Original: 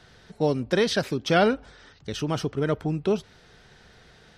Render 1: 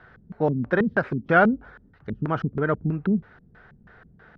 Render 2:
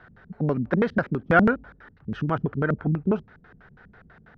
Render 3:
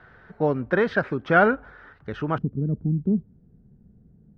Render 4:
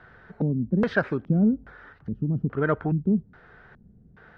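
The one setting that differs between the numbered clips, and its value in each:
LFO low-pass, rate: 3.1 Hz, 6.1 Hz, 0.21 Hz, 1.2 Hz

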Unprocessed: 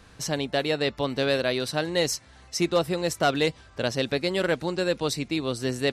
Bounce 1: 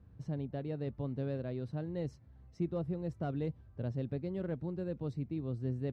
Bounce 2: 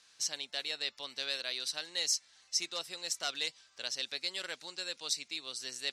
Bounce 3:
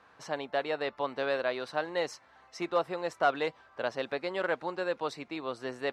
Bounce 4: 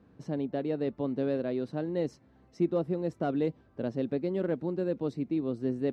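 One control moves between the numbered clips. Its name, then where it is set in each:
band-pass filter, frequency: 100 Hz, 5.7 kHz, 1 kHz, 250 Hz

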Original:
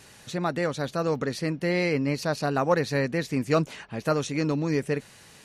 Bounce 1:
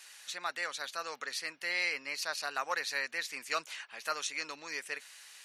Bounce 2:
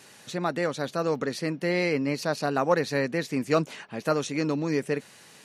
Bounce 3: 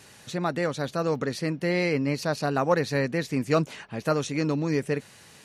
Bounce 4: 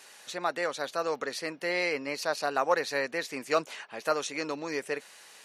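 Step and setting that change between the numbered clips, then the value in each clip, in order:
high-pass, cutoff frequency: 1.5 kHz, 170 Hz, 64 Hz, 560 Hz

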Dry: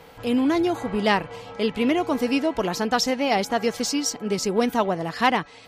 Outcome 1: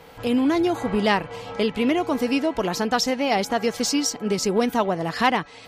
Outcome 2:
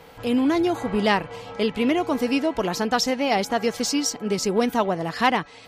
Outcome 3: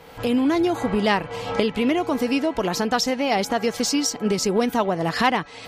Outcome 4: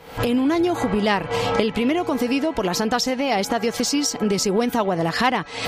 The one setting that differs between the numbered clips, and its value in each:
recorder AGC, rising by: 13 dB/s, 5.1 dB/s, 34 dB/s, 83 dB/s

